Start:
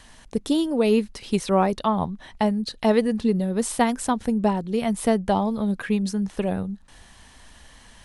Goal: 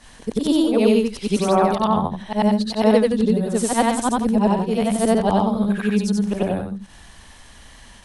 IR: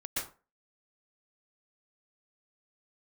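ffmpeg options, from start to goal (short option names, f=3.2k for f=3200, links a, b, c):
-af "afftfilt=real='re':imag='-im':win_size=8192:overlap=0.75,adynamicequalizer=threshold=0.00178:dfrequency=2000:dqfactor=3.9:tfrequency=2000:tqfactor=3.9:attack=5:release=100:ratio=0.375:range=2:mode=cutabove:tftype=bell,volume=8.5dB"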